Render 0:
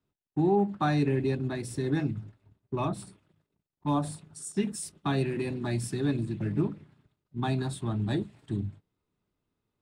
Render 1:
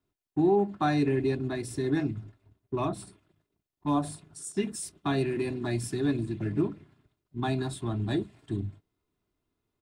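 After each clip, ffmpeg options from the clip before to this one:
-af "aecho=1:1:2.9:0.37"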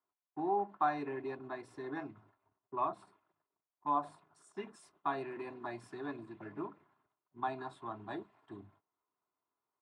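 -af "bandpass=f=1000:t=q:w=2.4:csg=0,volume=1.26"

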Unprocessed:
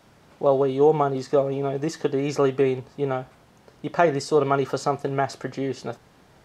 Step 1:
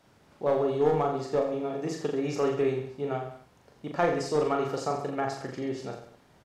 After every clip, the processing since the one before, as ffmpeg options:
-filter_complex "[0:a]aeval=exprs='clip(val(0),-1,0.188)':c=same,asplit=2[s0][s1];[s1]aecho=0:1:40|84|132.4|185.6|244.2:0.631|0.398|0.251|0.158|0.1[s2];[s0][s2]amix=inputs=2:normalize=0,volume=0.422"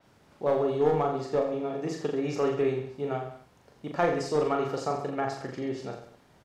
-af "adynamicequalizer=threshold=0.00224:dfrequency=5600:dqfactor=0.7:tfrequency=5600:tqfactor=0.7:attack=5:release=100:ratio=0.375:range=2:mode=cutabove:tftype=highshelf"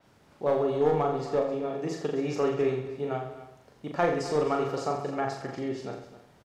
-af "aecho=1:1:264:0.188"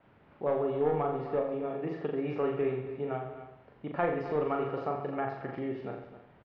-filter_complex "[0:a]lowpass=f=2800:w=0.5412,lowpass=f=2800:w=1.3066,asplit=2[s0][s1];[s1]acompressor=threshold=0.0178:ratio=6,volume=0.794[s2];[s0][s2]amix=inputs=2:normalize=0,volume=0.531"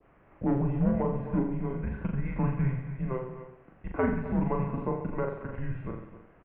-af "highpass=f=210:t=q:w=0.5412,highpass=f=210:t=q:w=1.307,lowpass=f=2900:t=q:w=0.5176,lowpass=f=2900:t=q:w=0.7071,lowpass=f=2900:t=q:w=1.932,afreqshift=-260,adynamicequalizer=threshold=0.00398:dfrequency=1700:dqfactor=1:tfrequency=1700:tqfactor=1:attack=5:release=100:ratio=0.375:range=2:mode=cutabove:tftype=bell,volume=1.41"

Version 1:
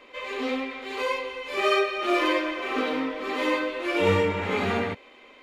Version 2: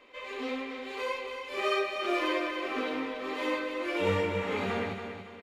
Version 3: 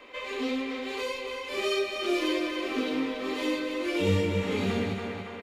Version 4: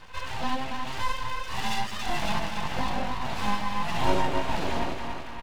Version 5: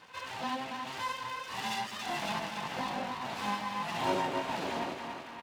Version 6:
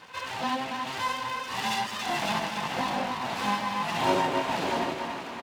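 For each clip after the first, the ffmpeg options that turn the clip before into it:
-af "aecho=1:1:281|562|843|1124:0.398|0.155|0.0606|0.0236,volume=0.473"
-filter_complex "[0:a]acrossover=split=400|3000[s0][s1][s2];[s1]acompressor=threshold=0.00631:ratio=10[s3];[s0][s3][s2]amix=inputs=3:normalize=0,volume=2.37"
-af "equalizer=f=500:w=3.4:g=11,aeval=exprs='abs(val(0))':c=same"
-af "highpass=180,volume=0.596"
-af "aecho=1:1:639:0.237,volume=2"

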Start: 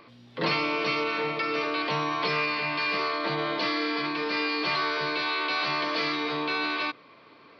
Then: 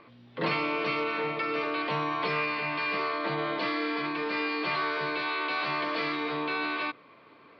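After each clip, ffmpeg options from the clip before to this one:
-af "lowpass=3200,volume=0.841"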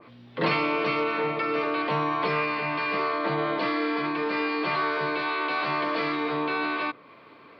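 -af "adynamicequalizer=threshold=0.00708:dfrequency=1800:dqfactor=0.7:tfrequency=1800:tqfactor=0.7:attack=5:release=100:ratio=0.375:range=2.5:mode=cutabove:tftype=highshelf,volume=1.68"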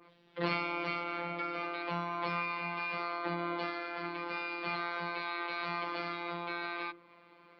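-af "bandreject=f=60:t=h:w=6,bandreject=f=120:t=h:w=6,bandreject=f=180:t=h:w=6,bandreject=f=240:t=h:w=6,bandreject=f=300:t=h:w=6,afftfilt=real='hypot(re,im)*cos(PI*b)':imag='0':win_size=1024:overlap=0.75,volume=0.531"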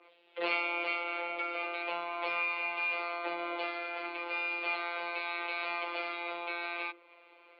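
-af "highpass=f=410:w=0.5412,highpass=f=410:w=1.3066,equalizer=f=1100:t=q:w=4:g=-7,equalizer=f=1700:t=q:w=4:g=-7,equalizer=f=2600:t=q:w=4:g=6,lowpass=f=3800:w=0.5412,lowpass=f=3800:w=1.3066,volume=1.41"

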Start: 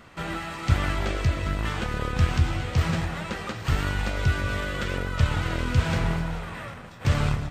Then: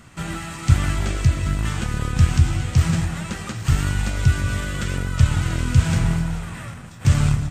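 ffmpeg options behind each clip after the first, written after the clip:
-af "equalizer=f=125:t=o:w=1:g=4,equalizer=f=500:t=o:w=1:g=-8,equalizer=f=1000:t=o:w=1:g=-4,equalizer=f=2000:t=o:w=1:g=-3,equalizer=f=4000:t=o:w=1:g=-4,equalizer=f=8000:t=o:w=1:g=8,volume=1.68"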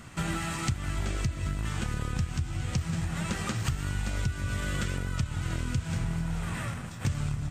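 -af "acompressor=threshold=0.0501:ratio=12"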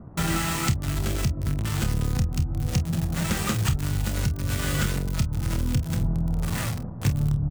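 -filter_complex "[0:a]acrossover=split=100|880[s0][s1][s2];[s2]acrusher=bits=5:mix=0:aa=0.000001[s3];[s0][s1][s3]amix=inputs=3:normalize=0,aecho=1:1:28|48:0.335|0.188,volume=1.88"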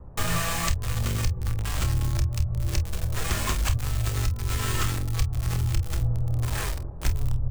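-af "afreqshift=-160"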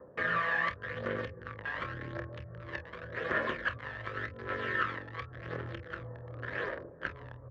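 -af "aphaser=in_gain=1:out_gain=1:delay=1.2:decay=0.48:speed=0.89:type=triangular,highpass=350,equalizer=f=520:t=q:w=4:g=9,equalizer=f=810:t=q:w=4:g=-9,equalizer=f=1700:t=q:w=4:g=10,equalizer=f=2500:t=q:w=4:g=-7,lowpass=f=2600:w=0.5412,lowpass=f=2600:w=1.3066,volume=0.708"

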